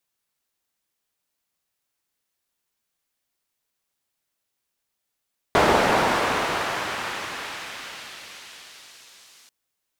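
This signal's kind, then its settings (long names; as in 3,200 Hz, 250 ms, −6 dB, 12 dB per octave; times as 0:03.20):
filter sweep on noise pink, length 3.94 s bandpass, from 660 Hz, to 5,600 Hz, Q 0.78, exponential, gain ramp −36.5 dB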